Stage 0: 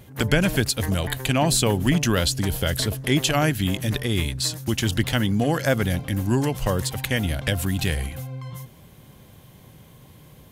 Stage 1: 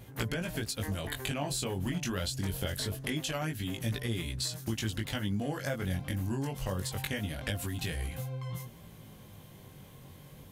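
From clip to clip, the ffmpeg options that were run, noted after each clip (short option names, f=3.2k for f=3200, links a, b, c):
-af "acompressor=threshold=-28dB:ratio=6,flanger=delay=17.5:depth=4.3:speed=0.24"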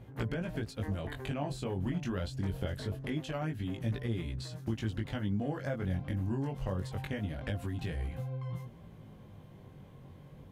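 -af "lowpass=f=1.1k:p=1"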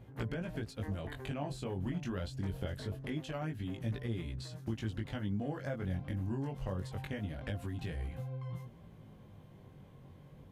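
-af "aresample=32000,aresample=44100,volume=-3dB"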